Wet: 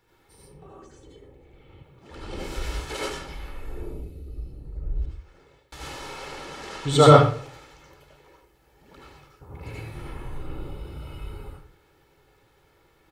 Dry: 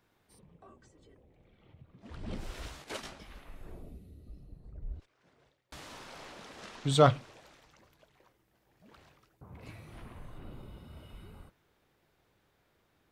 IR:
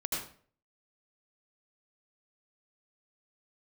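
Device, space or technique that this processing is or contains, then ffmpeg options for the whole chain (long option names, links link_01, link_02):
microphone above a desk: -filter_complex "[0:a]aecho=1:1:2.3:0.55[link_01];[1:a]atrim=start_sample=2205[link_02];[link_01][link_02]afir=irnorm=-1:irlink=0,asettb=1/sr,asplit=3[link_03][link_04][link_05];[link_03]atrim=end=1.834[link_06];[link_04]atrim=start=1.83:end=2.58,asetpts=PTS-STARTPTS,afade=type=in:duration=0.004:curve=qsin,afade=type=out:start_time=0.746:duration=0.004:curve=qsin,bass=frequency=250:gain=-8,treble=frequency=4000:gain=2[link_07];[link_05]atrim=start=2.576[link_08];[link_06][link_07]acrossfade=duration=0.004:curve1=hsin:curve2=qsin[link_09];[link_09][link_08]acrossfade=duration=0.004:curve1=qsin:curve2=hsin,volume=5dB"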